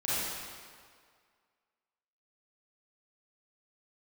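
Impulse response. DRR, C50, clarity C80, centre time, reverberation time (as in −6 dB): −11.0 dB, −6.5 dB, −2.5 dB, 153 ms, 2.0 s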